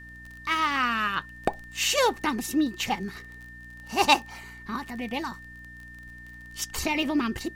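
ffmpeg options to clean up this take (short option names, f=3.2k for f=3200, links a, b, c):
-af "adeclick=t=4,bandreject=f=59.8:t=h:w=4,bandreject=f=119.6:t=h:w=4,bandreject=f=179.4:t=h:w=4,bandreject=f=239.2:t=h:w=4,bandreject=f=299:t=h:w=4,bandreject=f=1.8k:w=30,agate=range=-21dB:threshold=-37dB"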